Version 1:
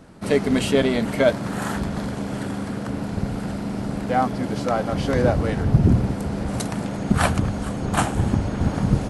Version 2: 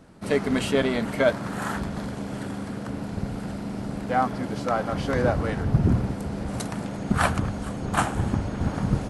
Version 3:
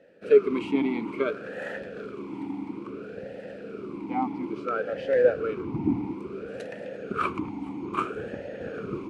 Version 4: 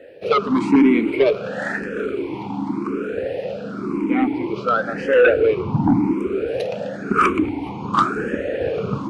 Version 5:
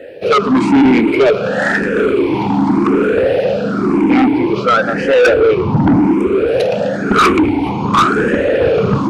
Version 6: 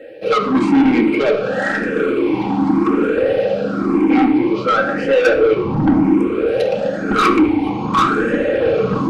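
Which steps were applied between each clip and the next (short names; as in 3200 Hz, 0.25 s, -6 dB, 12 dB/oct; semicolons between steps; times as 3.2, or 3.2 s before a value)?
dynamic EQ 1300 Hz, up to +5 dB, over -34 dBFS, Q 1; gain -4.5 dB
vowel sweep e-u 0.59 Hz; gain +8.5 dB
sine folder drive 11 dB, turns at -7 dBFS; endless phaser +0.94 Hz
in parallel at +2.5 dB: vocal rider 2 s; on the sum: soft clip -9.5 dBFS, distortion -10 dB; gain +3.5 dB
reverb RT60 0.55 s, pre-delay 4 ms, DRR 0.5 dB; gain -6.5 dB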